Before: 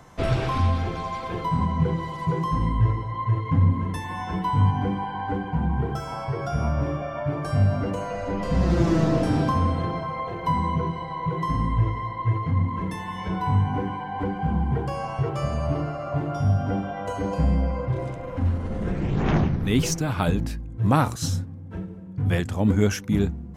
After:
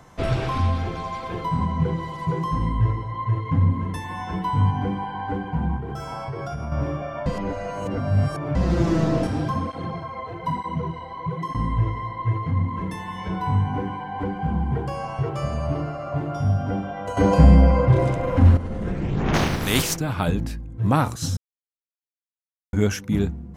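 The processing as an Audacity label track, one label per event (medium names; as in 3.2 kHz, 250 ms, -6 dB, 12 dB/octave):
5.760000	6.720000	compression, threshold -26 dBFS
7.260000	8.550000	reverse
9.270000	11.550000	cancelling through-zero flanger nulls at 1.1 Hz, depth 7.2 ms
17.170000	18.570000	gain +9.5 dB
19.330000	19.950000	spectral contrast reduction exponent 0.52
21.370000	22.730000	mute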